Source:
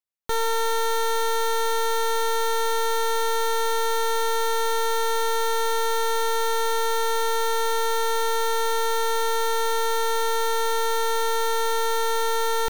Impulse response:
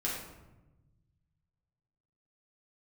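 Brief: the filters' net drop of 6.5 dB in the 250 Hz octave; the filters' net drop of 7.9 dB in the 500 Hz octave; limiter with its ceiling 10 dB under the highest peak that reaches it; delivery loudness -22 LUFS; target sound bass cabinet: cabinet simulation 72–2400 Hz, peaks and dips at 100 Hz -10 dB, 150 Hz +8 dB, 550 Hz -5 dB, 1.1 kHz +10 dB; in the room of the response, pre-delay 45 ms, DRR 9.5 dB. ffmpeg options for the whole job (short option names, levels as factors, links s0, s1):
-filter_complex "[0:a]equalizer=f=250:t=o:g=-8,equalizer=f=500:t=o:g=-5,alimiter=level_in=1.41:limit=0.0631:level=0:latency=1,volume=0.708,asplit=2[s0][s1];[1:a]atrim=start_sample=2205,adelay=45[s2];[s1][s2]afir=irnorm=-1:irlink=0,volume=0.188[s3];[s0][s3]amix=inputs=2:normalize=0,highpass=f=72:w=0.5412,highpass=f=72:w=1.3066,equalizer=f=100:t=q:w=4:g=-10,equalizer=f=150:t=q:w=4:g=8,equalizer=f=550:t=q:w=4:g=-5,equalizer=f=1100:t=q:w=4:g=10,lowpass=f=2400:w=0.5412,lowpass=f=2400:w=1.3066,volume=3.76"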